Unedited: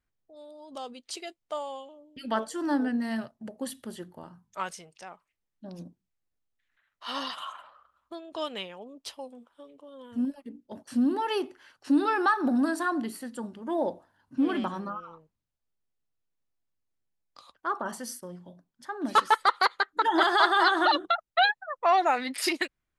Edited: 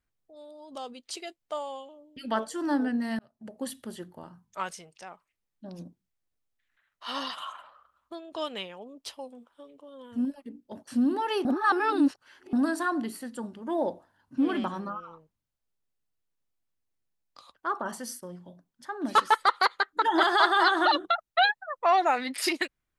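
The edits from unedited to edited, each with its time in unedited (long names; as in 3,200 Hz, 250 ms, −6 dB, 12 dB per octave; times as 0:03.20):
0:03.19–0:03.59: fade in
0:11.45–0:12.53: reverse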